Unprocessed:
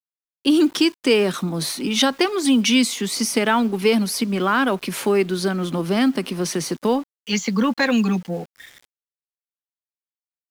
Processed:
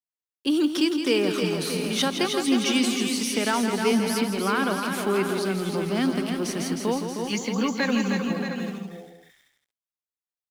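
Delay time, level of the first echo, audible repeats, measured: 165 ms, −8.5 dB, 8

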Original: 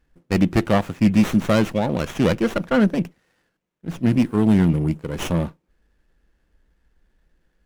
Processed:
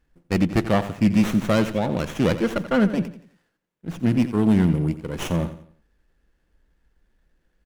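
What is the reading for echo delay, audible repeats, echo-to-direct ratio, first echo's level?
87 ms, 3, −12.5 dB, −13.0 dB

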